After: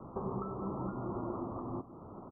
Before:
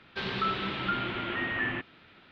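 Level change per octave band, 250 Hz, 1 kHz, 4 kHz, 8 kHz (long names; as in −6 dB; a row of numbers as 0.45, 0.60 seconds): −1.5 dB, −9.0 dB, below −40 dB, can't be measured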